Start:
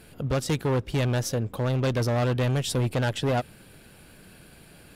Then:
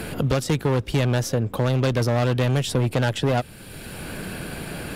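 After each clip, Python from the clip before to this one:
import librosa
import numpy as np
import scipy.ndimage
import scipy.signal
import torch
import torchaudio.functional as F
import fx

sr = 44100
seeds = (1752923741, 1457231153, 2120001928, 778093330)

y = fx.band_squash(x, sr, depth_pct=70)
y = y * 10.0 ** (3.5 / 20.0)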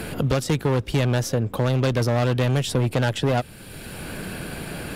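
y = x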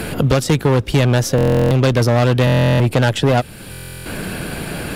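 y = fx.buffer_glitch(x, sr, at_s=(1.36, 2.45, 3.71), block=1024, repeats=14)
y = y * 10.0 ** (7.0 / 20.0)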